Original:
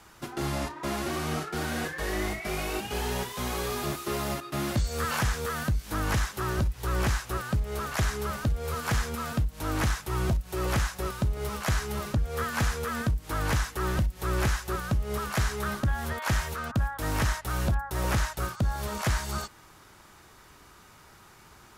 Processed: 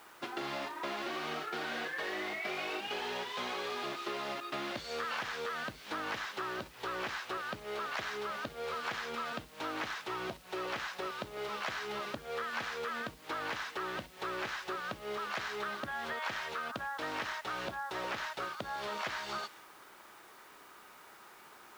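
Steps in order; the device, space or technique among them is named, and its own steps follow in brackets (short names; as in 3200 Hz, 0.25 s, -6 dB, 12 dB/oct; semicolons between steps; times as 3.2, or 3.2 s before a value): baby monitor (BPF 360–3400 Hz; compressor, threshold -36 dBFS, peak gain reduction 9.5 dB; white noise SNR 23 dB); dynamic EQ 3700 Hz, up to +6 dB, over -57 dBFS, Q 0.79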